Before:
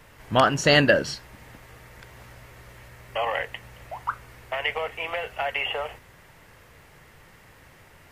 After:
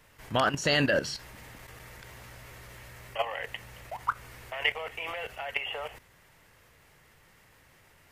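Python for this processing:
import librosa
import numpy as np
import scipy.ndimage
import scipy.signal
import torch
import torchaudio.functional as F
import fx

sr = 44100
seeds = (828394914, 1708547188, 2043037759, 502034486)

y = fx.high_shelf(x, sr, hz=2400.0, db=5.0)
y = fx.level_steps(y, sr, step_db=12)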